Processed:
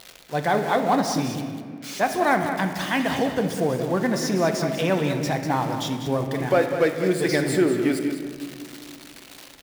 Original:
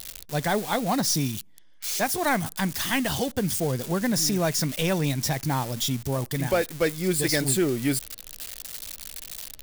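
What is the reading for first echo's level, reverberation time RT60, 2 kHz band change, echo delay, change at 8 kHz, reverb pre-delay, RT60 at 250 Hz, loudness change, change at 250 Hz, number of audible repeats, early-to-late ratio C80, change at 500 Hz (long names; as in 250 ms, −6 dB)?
−9.5 dB, 2.1 s, +3.0 dB, 197 ms, −7.5 dB, 3 ms, 3.2 s, +2.5 dB, +3.5 dB, 1, 6.0 dB, +5.5 dB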